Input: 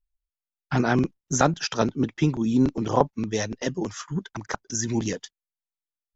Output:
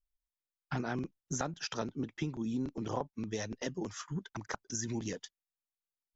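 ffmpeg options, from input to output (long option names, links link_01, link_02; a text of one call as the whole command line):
ffmpeg -i in.wav -af "acompressor=threshold=-26dB:ratio=4,volume=-7dB" out.wav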